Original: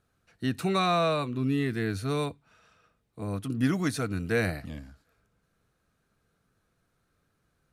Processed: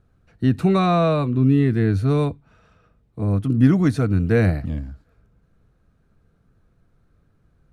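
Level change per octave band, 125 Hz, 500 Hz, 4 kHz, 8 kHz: +13.5 dB, +7.5 dB, -1.0 dB, n/a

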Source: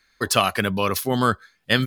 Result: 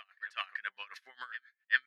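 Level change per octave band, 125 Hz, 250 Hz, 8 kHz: under -40 dB, under -40 dB, -39.0 dB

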